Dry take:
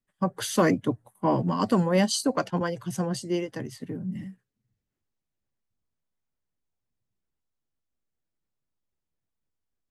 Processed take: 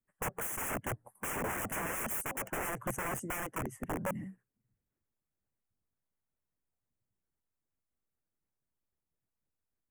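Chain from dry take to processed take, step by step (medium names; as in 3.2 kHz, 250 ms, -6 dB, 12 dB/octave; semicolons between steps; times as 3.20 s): integer overflow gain 27.5 dB; Butterworth band-stop 4.2 kHz, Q 0.77; harmonic-percussive split harmonic -6 dB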